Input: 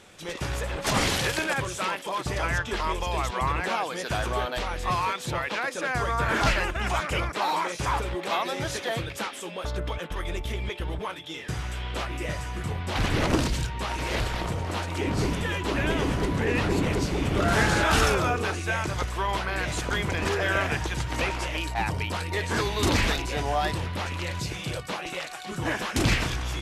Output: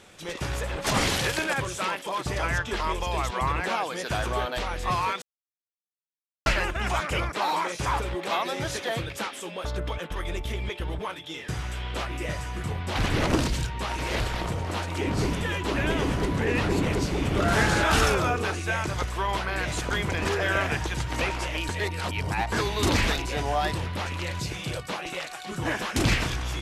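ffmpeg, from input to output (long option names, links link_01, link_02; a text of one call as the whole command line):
ffmpeg -i in.wav -filter_complex "[0:a]asplit=5[link_01][link_02][link_03][link_04][link_05];[link_01]atrim=end=5.22,asetpts=PTS-STARTPTS,afade=type=out:start_time=5.216:duration=0.004:curve=hsin[link_06];[link_02]atrim=start=5.22:end=6.46,asetpts=PTS-STARTPTS,volume=0[link_07];[link_03]atrim=start=6.46:end=21.692,asetpts=PTS-STARTPTS,afade=type=in:duration=0.004:curve=hsin[link_08];[link_04]atrim=start=21.688:end=22.522,asetpts=PTS-STARTPTS,areverse[link_09];[link_05]atrim=start=22.518[link_10];[link_06][link_07][link_08]concat=n=3:v=0:a=1[link_11];[link_11][link_09]acrossfade=duration=0.004:curve1=hsin:curve2=hsin[link_12];[link_12][link_10]acrossfade=duration=0.004:curve1=hsin:curve2=hsin" out.wav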